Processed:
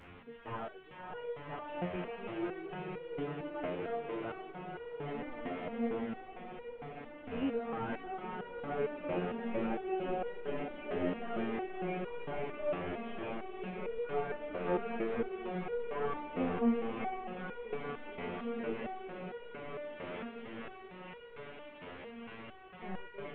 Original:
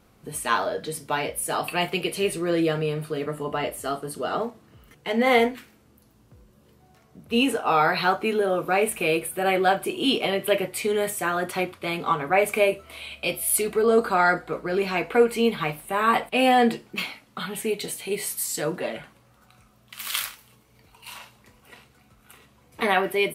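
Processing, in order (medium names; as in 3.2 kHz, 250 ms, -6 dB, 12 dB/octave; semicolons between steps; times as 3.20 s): one-bit delta coder 16 kbps, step -36 dBFS; echo that smears into a reverb 545 ms, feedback 79%, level -3 dB; resonator arpeggio 4.4 Hz 89–480 Hz; trim -2 dB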